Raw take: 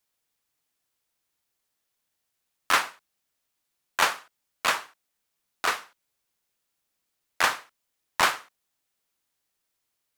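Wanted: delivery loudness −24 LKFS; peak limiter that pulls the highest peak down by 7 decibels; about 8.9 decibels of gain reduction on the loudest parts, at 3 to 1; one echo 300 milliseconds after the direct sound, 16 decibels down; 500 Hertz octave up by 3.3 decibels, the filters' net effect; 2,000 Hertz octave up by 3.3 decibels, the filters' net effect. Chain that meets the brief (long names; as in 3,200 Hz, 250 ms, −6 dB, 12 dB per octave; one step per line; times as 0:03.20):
parametric band 500 Hz +4 dB
parametric band 2,000 Hz +4 dB
downward compressor 3 to 1, threshold −26 dBFS
brickwall limiter −16.5 dBFS
single-tap delay 300 ms −16 dB
level +11 dB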